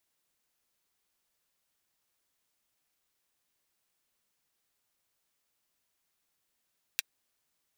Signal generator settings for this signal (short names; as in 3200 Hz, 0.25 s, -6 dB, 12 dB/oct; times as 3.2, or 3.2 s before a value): closed hi-hat, high-pass 2200 Hz, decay 0.03 s